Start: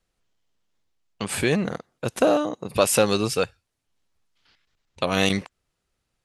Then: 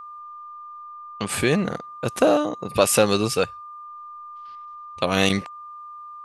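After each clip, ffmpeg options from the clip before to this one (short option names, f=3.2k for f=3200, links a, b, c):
-af "aeval=exprs='val(0)+0.0126*sin(2*PI*1200*n/s)':c=same,volume=1.5dB"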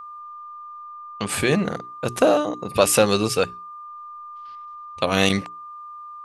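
-af "bandreject=f=60:t=h:w=6,bandreject=f=120:t=h:w=6,bandreject=f=180:t=h:w=6,bandreject=f=240:t=h:w=6,bandreject=f=300:t=h:w=6,bandreject=f=360:t=h:w=6,bandreject=f=420:t=h:w=6,volume=1dB"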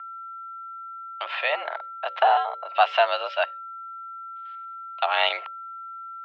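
-af "highpass=f=510:t=q:w=0.5412,highpass=f=510:t=q:w=1.307,lowpass=f=3.3k:t=q:w=0.5176,lowpass=f=3.3k:t=q:w=0.7071,lowpass=f=3.3k:t=q:w=1.932,afreqshift=150"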